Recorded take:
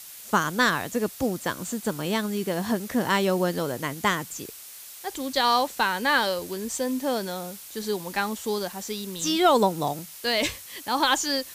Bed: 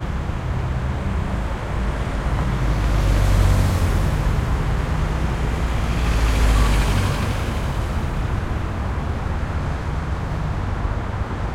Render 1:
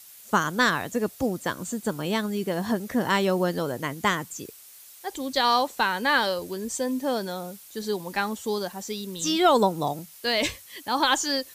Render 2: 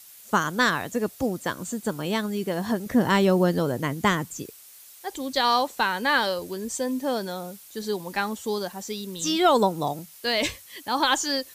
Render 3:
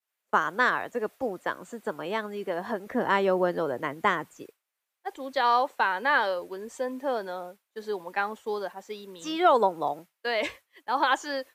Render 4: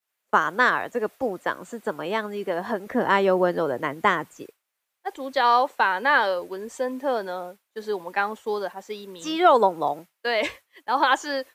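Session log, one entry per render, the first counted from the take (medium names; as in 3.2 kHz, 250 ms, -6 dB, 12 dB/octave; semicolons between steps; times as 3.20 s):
noise reduction 7 dB, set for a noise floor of -43 dBFS
2.86–4.43 s: bass shelf 390 Hz +7 dB
expander -33 dBFS; three-band isolator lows -16 dB, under 350 Hz, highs -16 dB, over 2.6 kHz
trim +4 dB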